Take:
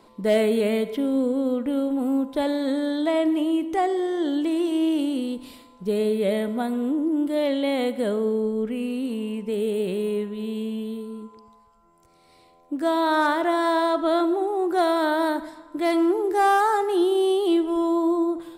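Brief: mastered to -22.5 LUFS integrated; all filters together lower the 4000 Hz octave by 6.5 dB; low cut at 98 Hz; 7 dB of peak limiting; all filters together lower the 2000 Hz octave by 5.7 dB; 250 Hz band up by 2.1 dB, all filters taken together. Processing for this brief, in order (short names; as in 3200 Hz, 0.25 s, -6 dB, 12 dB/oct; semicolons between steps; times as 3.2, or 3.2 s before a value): HPF 98 Hz; bell 250 Hz +3 dB; bell 2000 Hz -7 dB; bell 4000 Hz -5.5 dB; gain +2 dB; limiter -15.5 dBFS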